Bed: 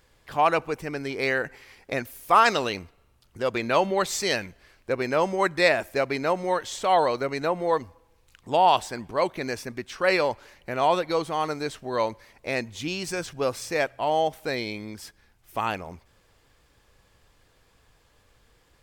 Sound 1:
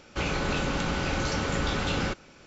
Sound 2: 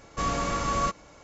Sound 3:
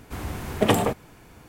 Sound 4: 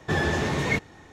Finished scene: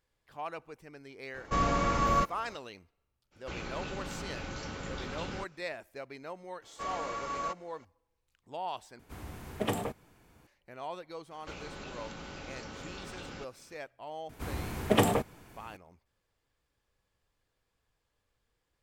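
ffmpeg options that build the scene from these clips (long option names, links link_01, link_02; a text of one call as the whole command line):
ffmpeg -i bed.wav -i cue0.wav -i cue1.wav -i cue2.wav -filter_complex "[2:a]asplit=2[link_01][link_02];[1:a]asplit=2[link_03][link_04];[3:a]asplit=2[link_05][link_06];[0:a]volume=-18.5dB[link_07];[link_01]aemphasis=mode=reproduction:type=50fm[link_08];[link_02]bass=frequency=250:gain=-13,treble=frequency=4000:gain=-6[link_09];[link_04]acrossover=split=220|1300|2700[link_10][link_11][link_12][link_13];[link_10]acompressor=threshold=-41dB:ratio=3[link_14];[link_11]acompressor=threshold=-37dB:ratio=3[link_15];[link_12]acompressor=threshold=-46dB:ratio=3[link_16];[link_13]acompressor=threshold=-43dB:ratio=3[link_17];[link_14][link_15][link_16][link_17]amix=inputs=4:normalize=0[link_18];[link_07]asplit=2[link_19][link_20];[link_19]atrim=end=8.994[link_21];[link_05]atrim=end=1.48,asetpts=PTS-STARTPTS,volume=-12dB[link_22];[link_20]atrim=start=10.466[link_23];[link_08]atrim=end=1.23,asetpts=PTS-STARTPTS,afade=type=in:duration=0.004:curve=hsin,afade=type=out:start_time=1.226:duration=0.004:curve=hsin,adelay=1340[link_24];[link_03]atrim=end=2.46,asetpts=PTS-STARTPTS,volume=-12dB,afade=type=in:duration=0.02,afade=type=out:start_time=2.44:duration=0.02,adelay=3310[link_25];[link_09]atrim=end=1.23,asetpts=PTS-STARTPTS,volume=-8dB,afade=type=in:duration=0.004:curve=hsin,afade=type=out:start_time=1.226:duration=0.004:curve=hsin,adelay=6620[link_26];[link_18]atrim=end=2.46,asetpts=PTS-STARTPTS,volume=-10dB,afade=type=in:duration=0.004:curve=hsin,afade=type=out:start_time=2.456:duration=0.004:curve=hsin,adelay=11310[link_27];[link_06]atrim=end=1.48,asetpts=PTS-STARTPTS,volume=-4.5dB,afade=type=in:duration=0.004:curve=hsin,afade=type=out:start_time=1.476:duration=0.004:curve=hsin,adelay=14290[link_28];[link_21][link_22]acrossfade=duration=0.004:curve1=hsin:curve2=hsin[link_29];[link_29][link_23]acrossfade=duration=0.004:curve1=hsin:curve2=hsin[link_30];[link_30][link_24][link_25][link_26][link_27][link_28]amix=inputs=6:normalize=0" out.wav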